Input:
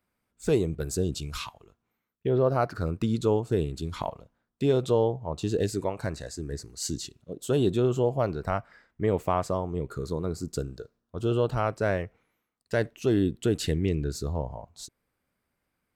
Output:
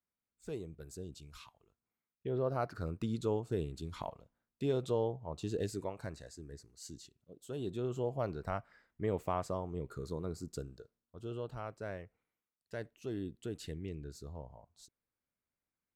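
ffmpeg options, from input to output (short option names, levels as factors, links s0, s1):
-af "volume=0.841,afade=t=in:st=1.47:d=1.19:silence=0.375837,afade=t=out:st=5.7:d=1.05:silence=0.421697,afade=t=in:st=7.53:d=0.75:silence=0.398107,afade=t=out:st=10.31:d=0.88:silence=0.446684"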